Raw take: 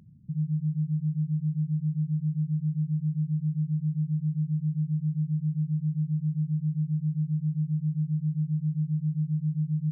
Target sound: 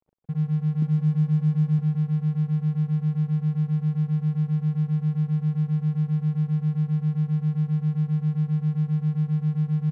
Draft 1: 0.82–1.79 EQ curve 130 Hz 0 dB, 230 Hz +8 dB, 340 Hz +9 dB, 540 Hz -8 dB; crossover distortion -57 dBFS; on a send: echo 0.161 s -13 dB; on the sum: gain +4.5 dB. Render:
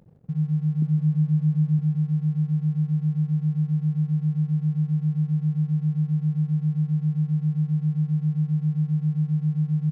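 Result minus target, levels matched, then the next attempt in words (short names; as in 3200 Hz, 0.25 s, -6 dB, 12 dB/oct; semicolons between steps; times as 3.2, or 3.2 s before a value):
crossover distortion: distortion -9 dB
0.82–1.79 EQ curve 130 Hz 0 dB, 230 Hz +8 dB, 340 Hz +9 dB, 540 Hz -8 dB; crossover distortion -47.5 dBFS; on a send: echo 0.161 s -13 dB; on the sum: gain +4.5 dB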